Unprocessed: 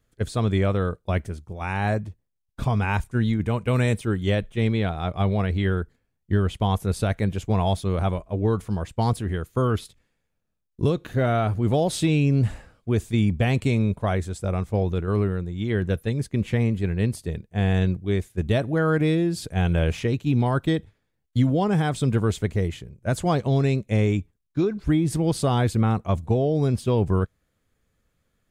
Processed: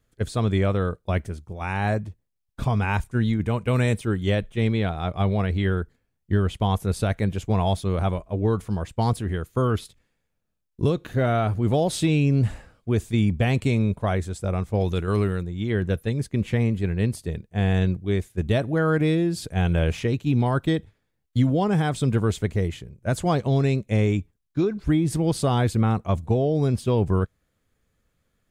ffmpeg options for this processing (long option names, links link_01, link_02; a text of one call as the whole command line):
ffmpeg -i in.wav -filter_complex "[0:a]asettb=1/sr,asplit=3[link_01][link_02][link_03];[link_01]atrim=end=14.804[link_04];[link_02]atrim=start=14.8:end=15.43,asetpts=PTS-STARTPTS,afade=type=in:duration=0.004:curve=qsin,afade=type=out:start_time=0.626:duration=0.004:curve=qsin,highshelf=frequency=2300:gain=11[link_05];[link_03]atrim=start=15.426[link_06];[link_04][link_05]acrossfade=duration=0.004:curve1=hsin:curve2=qsin[link_07];[link_07][link_06]acrossfade=duration=0.004:curve1=qsin:curve2=hsin" out.wav